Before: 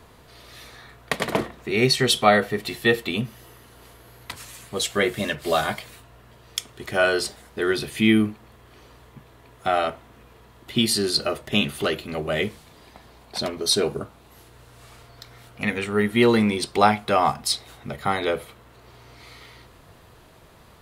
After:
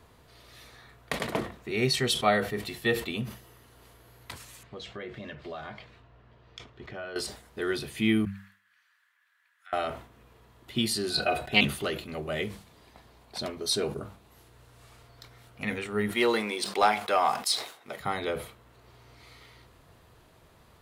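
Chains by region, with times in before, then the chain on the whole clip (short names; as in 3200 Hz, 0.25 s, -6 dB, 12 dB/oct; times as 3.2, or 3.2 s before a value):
4.63–7.16 air absorption 210 m + compressor 3:1, threshold -31 dBFS
8.25–9.73 compressor 1.5:1, threshold -41 dBFS + ladder high-pass 1500 Hz, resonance 70%
11.1–11.61 bell 6100 Hz -6 dB 0.26 oct + small resonant body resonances 720/1500/2500/3900 Hz, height 18 dB, ringing for 75 ms + Doppler distortion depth 0.19 ms
16.11–18 HPF 420 Hz + sample leveller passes 1
whole clip: bell 89 Hz +2.5 dB 1.2 oct; de-hum 98.52 Hz, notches 2; sustainer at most 120 dB/s; gain -7.5 dB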